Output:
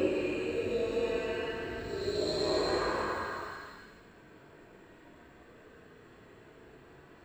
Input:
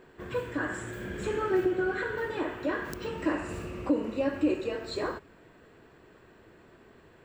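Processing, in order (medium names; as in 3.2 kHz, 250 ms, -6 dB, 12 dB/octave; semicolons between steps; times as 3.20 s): phase dispersion highs, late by 109 ms, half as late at 980 Hz; Paulstretch 5×, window 0.25 s, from 4.54 s; trim +1 dB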